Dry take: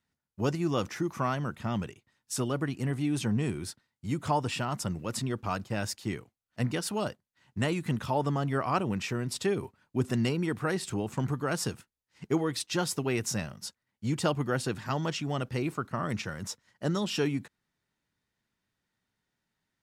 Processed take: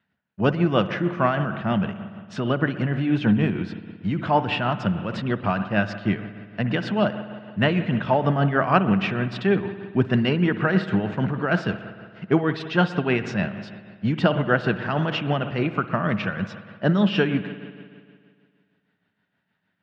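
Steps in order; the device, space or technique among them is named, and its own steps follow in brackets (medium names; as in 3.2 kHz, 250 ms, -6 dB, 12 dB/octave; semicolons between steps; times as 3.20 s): combo amplifier with spring reverb and tremolo (spring tank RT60 2 s, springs 57 ms, chirp 75 ms, DRR 9.5 dB; tremolo 6.4 Hz, depth 47%; cabinet simulation 100–3600 Hz, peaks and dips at 100 Hz +3 dB, 190 Hz +9 dB, 650 Hz +6 dB, 1.6 kHz +8 dB, 2.8 kHz +4 dB); trim +7.5 dB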